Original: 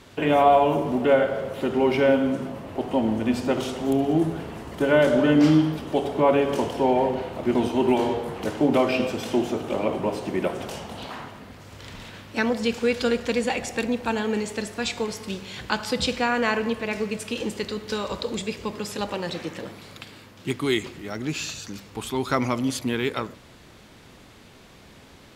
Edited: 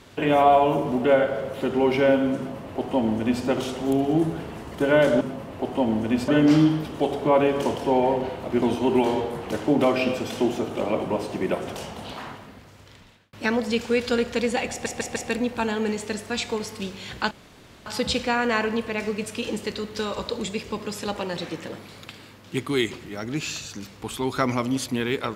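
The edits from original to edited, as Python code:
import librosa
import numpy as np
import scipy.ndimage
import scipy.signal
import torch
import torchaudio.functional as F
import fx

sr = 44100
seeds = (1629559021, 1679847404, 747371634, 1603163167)

y = fx.edit(x, sr, fx.duplicate(start_s=2.37, length_s=1.07, to_s=5.21),
    fx.fade_out_span(start_s=11.24, length_s=1.02),
    fx.stutter(start_s=13.64, slice_s=0.15, count=4),
    fx.insert_room_tone(at_s=15.79, length_s=0.55), tone=tone)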